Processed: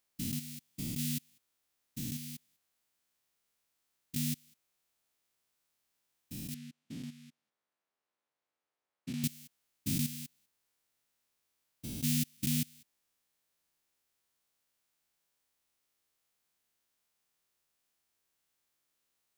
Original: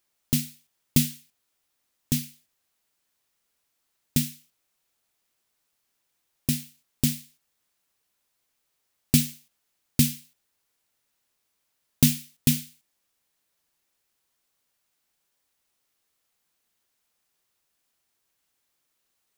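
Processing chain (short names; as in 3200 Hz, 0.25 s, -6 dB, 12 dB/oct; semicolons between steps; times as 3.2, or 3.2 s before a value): stepped spectrum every 0.2 s; 6.54–9.24 band-pass 680 Hz, Q 0.59; gain -3.5 dB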